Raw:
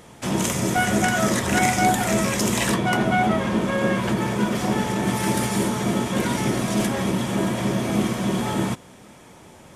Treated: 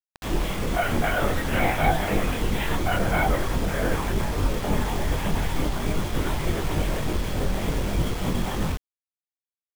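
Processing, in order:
linear-prediction vocoder at 8 kHz whisper
multi-voice chorus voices 6, 0.44 Hz, delay 23 ms, depth 3.4 ms
bit reduction 6 bits

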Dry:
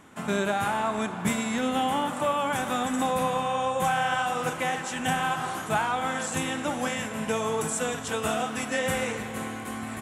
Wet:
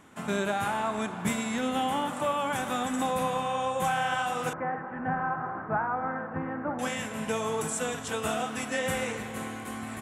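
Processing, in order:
0:04.53–0:06.79: Butterworth low-pass 1,700 Hz 36 dB per octave
level −2.5 dB

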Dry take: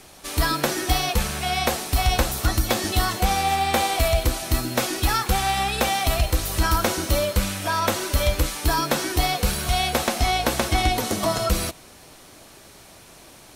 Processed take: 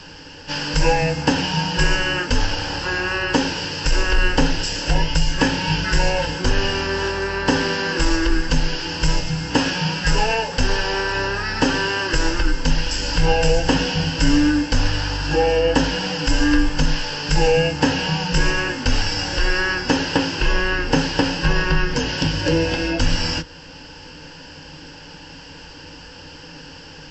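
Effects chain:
in parallel at −1 dB: downward compressor, threshold −32 dBFS, peak gain reduction 16.5 dB
on the sum: EQ curve with evenly spaced ripples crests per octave 1.2, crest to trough 13 dB
wrong playback speed 15 ips tape played at 7.5 ips

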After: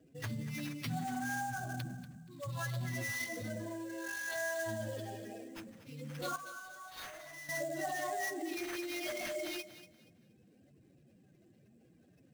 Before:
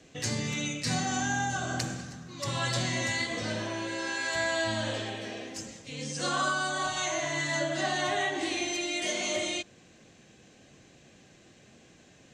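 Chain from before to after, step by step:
expanding power law on the bin magnitudes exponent 2.2
0:06.36–0:07.49: first-order pre-emphasis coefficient 0.8
sample-rate reduction 8,000 Hz, jitter 20%
feedback echo with a high-pass in the loop 238 ms, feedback 27%, high-pass 330 Hz, level −13.5 dB
level −7.5 dB

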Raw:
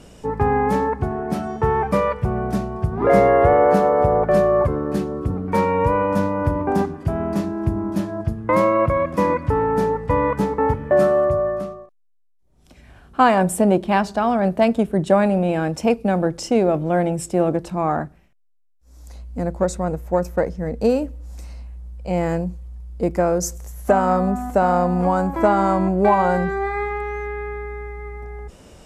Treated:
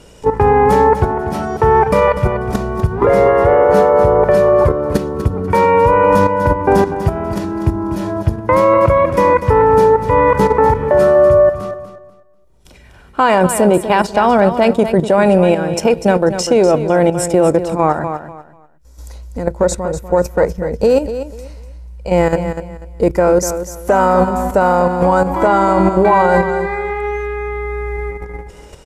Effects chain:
low-shelf EQ 310 Hz −3 dB
comb filter 2.1 ms, depth 34%
output level in coarse steps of 11 dB
on a send: repeating echo 245 ms, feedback 24%, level −11 dB
on the sum: boost into a limiter +13.5 dB
level −1 dB

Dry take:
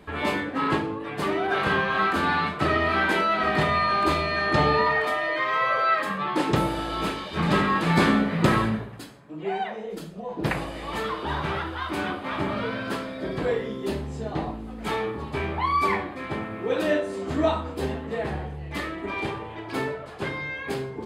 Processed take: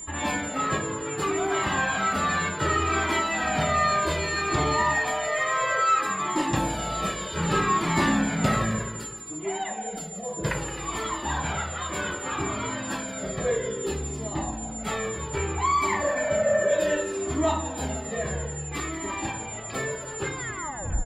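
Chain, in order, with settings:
turntable brake at the end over 0.68 s
healed spectral selection 0:16.04–0:16.85, 440–1,800 Hz after
in parallel at −6.5 dB: hard clipping −23 dBFS, distortion −9 dB
on the sum: single-tap delay 265 ms −14 dB
steady tone 7,200 Hz −33 dBFS
on a send: repeating echo 171 ms, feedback 51%, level −13 dB
on the sum: flanger whose copies keep moving one way falling 0.63 Hz

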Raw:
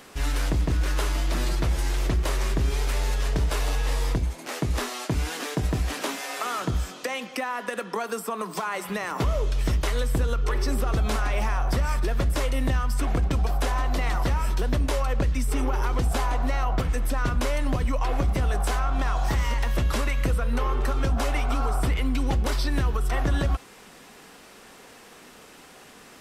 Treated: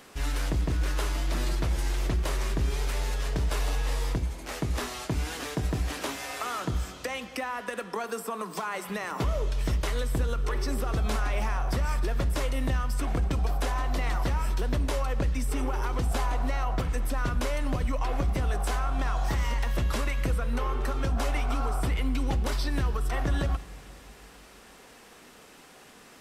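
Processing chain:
four-comb reverb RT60 2.9 s, DRR 16.5 dB
level −3.5 dB

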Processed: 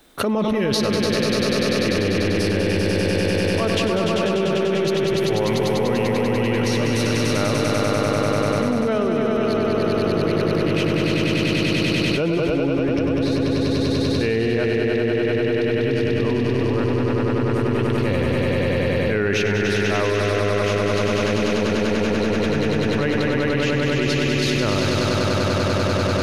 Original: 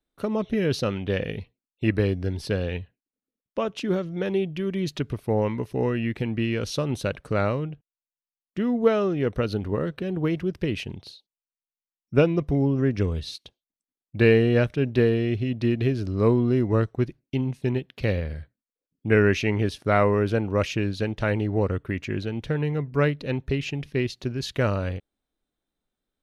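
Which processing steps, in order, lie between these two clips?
low-shelf EQ 160 Hz −9.5 dB
transient designer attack −11 dB, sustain +4 dB
on a send: echo that builds up and dies away 98 ms, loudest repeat 5, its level −3.5 dB
on the sum: envelope flattener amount 100%
level −7 dB

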